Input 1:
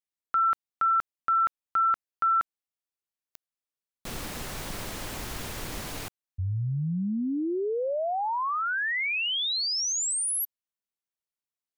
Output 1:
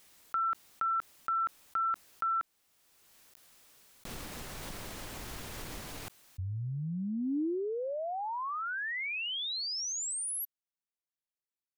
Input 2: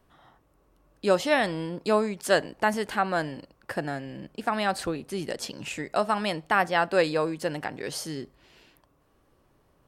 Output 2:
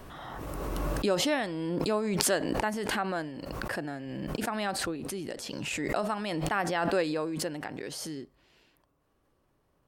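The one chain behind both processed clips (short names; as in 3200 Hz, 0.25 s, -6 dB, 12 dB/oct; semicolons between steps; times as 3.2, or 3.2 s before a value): dynamic EQ 300 Hz, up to +5 dB, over -41 dBFS, Q 2.2; backwards sustainer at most 21 dB/s; gain -7.5 dB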